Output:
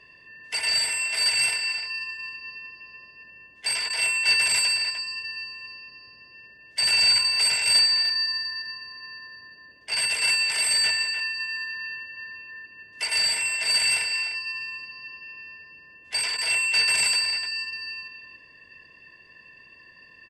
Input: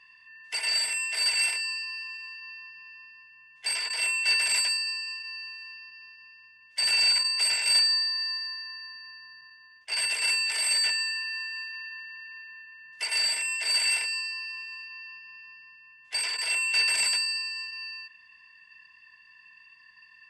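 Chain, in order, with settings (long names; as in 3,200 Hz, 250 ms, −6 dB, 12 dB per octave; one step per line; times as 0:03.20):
low-shelf EQ 200 Hz +11.5 dB
far-end echo of a speakerphone 300 ms, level −8 dB
noise in a band 61–580 Hz −69 dBFS
level +3 dB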